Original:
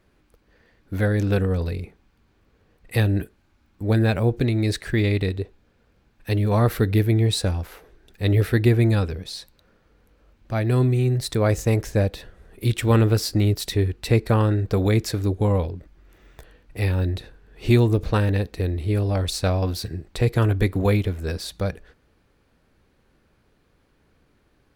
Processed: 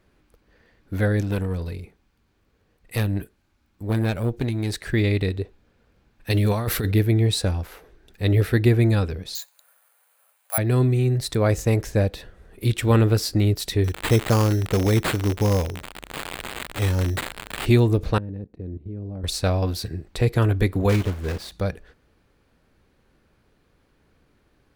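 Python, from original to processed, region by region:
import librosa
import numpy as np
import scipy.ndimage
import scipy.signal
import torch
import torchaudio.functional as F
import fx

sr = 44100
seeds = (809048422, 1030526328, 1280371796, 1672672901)

y = fx.chain(x, sr, fx.high_shelf(hz=4300.0, db=5.0),
    fx.tube_stage(drive_db=13.0, bias=0.75), at=(1.21, 4.81))
y = fx.chain(y, sr, fx.high_shelf(hz=2000.0, db=8.0),
    fx.over_compress(threshold_db=-20.0, ratio=-0.5), at=(6.3, 6.92))
y = fx.chain(y, sr, fx.steep_highpass(hz=640.0, slope=36),
    fx.resample_bad(factor=4, down='filtered', up='zero_stuff'), at=(9.35, 10.58))
y = fx.chain(y, sr, fx.crossing_spikes(level_db=-19.5),
    fx.sample_hold(seeds[0], rate_hz=5800.0, jitter_pct=0), at=(13.84, 17.66))
y = fx.chain(y, sr, fx.bandpass_q(hz=190.0, q=1.1),
    fx.level_steps(step_db=16), at=(18.18, 19.24))
y = fx.chain(y, sr, fx.block_float(bits=3),
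    fx.high_shelf(hz=3800.0, db=-9.5), at=(20.89, 21.52))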